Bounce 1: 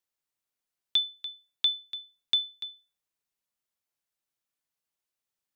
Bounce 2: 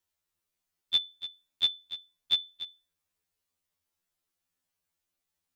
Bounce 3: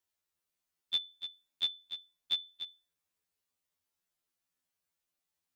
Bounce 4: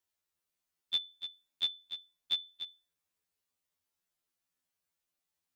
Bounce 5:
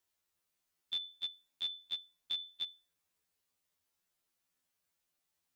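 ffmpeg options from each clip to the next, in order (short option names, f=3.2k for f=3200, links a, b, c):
-af "lowshelf=f=160:g=8.5,afftfilt=real='re*2*eq(mod(b,4),0)':imag='im*2*eq(mod(b,4),0)':win_size=2048:overlap=0.75,volume=5dB"
-af "lowshelf=f=84:g=-7.5,acompressor=threshold=-32dB:ratio=1.5,volume=-2.5dB"
-af anull
-af "alimiter=level_in=8.5dB:limit=-24dB:level=0:latency=1:release=86,volume=-8.5dB,volume=3dB"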